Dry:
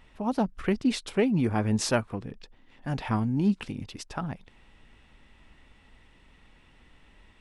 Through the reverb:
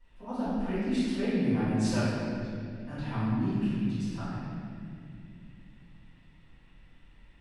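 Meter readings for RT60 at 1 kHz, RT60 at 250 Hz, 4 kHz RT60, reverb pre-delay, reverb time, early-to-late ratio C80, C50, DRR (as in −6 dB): 1.9 s, 4.0 s, 1.7 s, 3 ms, 2.4 s, −2.5 dB, −4.5 dB, −17.5 dB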